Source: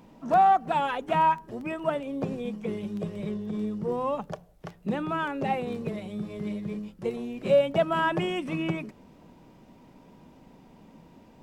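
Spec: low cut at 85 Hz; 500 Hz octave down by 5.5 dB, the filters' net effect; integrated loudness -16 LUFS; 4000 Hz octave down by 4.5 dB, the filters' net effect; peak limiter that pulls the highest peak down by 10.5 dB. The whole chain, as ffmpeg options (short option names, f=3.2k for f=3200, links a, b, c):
-af "highpass=85,equalizer=f=500:t=o:g=-7,equalizer=f=4k:t=o:g=-7,volume=19.5dB,alimiter=limit=-6dB:level=0:latency=1"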